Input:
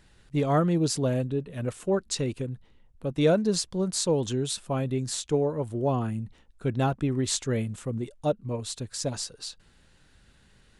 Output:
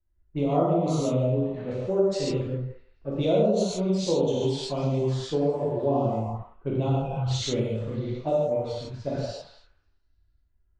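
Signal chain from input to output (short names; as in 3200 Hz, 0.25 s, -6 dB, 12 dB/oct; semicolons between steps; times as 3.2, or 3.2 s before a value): spectral repair 7–7.29, 210–2400 Hz before; envelope flanger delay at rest 3.2 ms, full sweep at -24.5 dBFS; delay with a stepping band-pass 0.167 s, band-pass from 650 Hz, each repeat 0.7 oct, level -3.5 dB; dynamic EQ 620 Hz, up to +4 dB, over -42 dBFS, Q 1.1; low-pass opened by the level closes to 1300 Hz, open at -21 dBFS; LPF 5200 Hz 12 dB/oct; non-linear reverb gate 0.18 s flat, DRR -5.5 dB; compressor 2.5:1, threshold -24 dBFS, peak gain reduction 9.5 dB; three-band expander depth 70%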